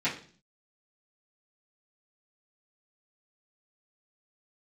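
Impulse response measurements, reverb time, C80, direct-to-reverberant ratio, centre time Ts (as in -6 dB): 0.45 s, 14.5 dB, -13.0 dB, 22 ms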